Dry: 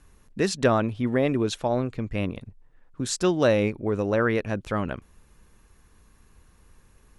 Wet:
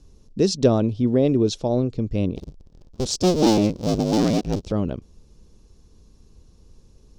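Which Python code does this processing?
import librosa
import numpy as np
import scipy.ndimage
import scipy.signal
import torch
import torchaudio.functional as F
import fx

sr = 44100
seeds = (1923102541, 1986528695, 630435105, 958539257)

y = fx.cycle_switch(x, sr, every=2, mode='inverted', at=(2.36, 4.72))
y = fx.curve_eq(y, sr, hz=(450.0, 1800.0, 3300.0, 5400.0, 11000.0), db=(0, -20, -6, 2, -16))
y = y * librosa.db_to_amplitude(5.5)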